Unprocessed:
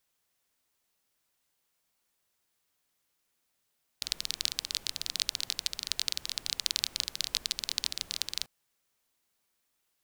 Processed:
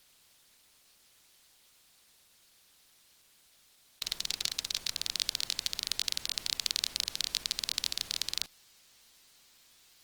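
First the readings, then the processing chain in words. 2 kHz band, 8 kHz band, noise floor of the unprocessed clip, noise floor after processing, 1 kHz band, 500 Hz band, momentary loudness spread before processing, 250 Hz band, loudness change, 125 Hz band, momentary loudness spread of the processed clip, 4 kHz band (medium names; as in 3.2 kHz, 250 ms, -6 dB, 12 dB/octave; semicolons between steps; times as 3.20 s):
+0.5 dB, 0.0 dB, -78 dBFS, -65 dBFS, +0.5 dB, +0.5 dB, 4 LU, +0.5 dB, 0.0 dB, +0.5 dB, 4 LU, 0.0 dB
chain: spectral levelling over time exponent 0.6; trim -2.5 dB; Opus 20 kbps 48 kHz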